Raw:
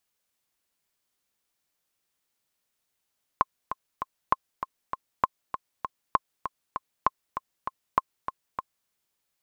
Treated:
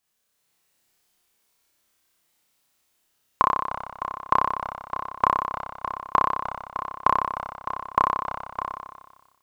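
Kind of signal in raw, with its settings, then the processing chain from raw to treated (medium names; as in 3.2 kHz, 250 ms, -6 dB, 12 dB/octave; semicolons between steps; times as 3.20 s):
metronome 197 bpm, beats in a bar 3, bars 6, 1.06 kHz, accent 10 dB -6.5 dBFS
flutter echo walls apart 5.2 m, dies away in 1.2 s; level rider gain up to 4.5 dB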